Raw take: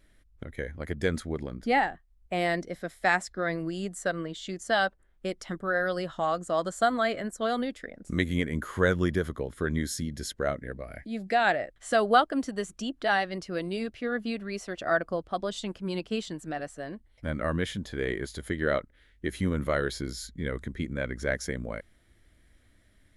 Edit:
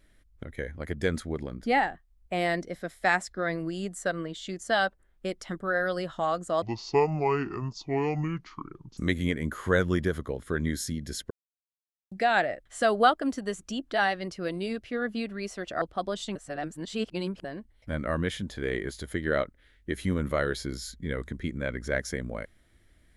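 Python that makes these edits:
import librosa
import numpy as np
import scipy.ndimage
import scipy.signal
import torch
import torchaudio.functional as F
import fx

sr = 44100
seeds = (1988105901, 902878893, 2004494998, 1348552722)

y = fx.edit(x, sr, fx.speed_span(start_s=6.62, length_s=1.46, speed=0.62),
    fx.silence(start_s=10.41, length_s=0.81),
    fx.cut(start_s=14.92, length_s=0.25),
    fx.reverse_span(start_s=15.71, length_s=1.09), tone=tone)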